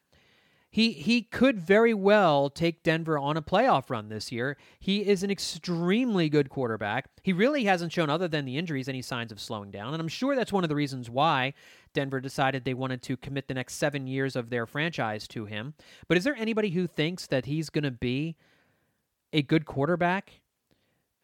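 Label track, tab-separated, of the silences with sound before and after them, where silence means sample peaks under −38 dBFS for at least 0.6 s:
18.320000	19.330000	silence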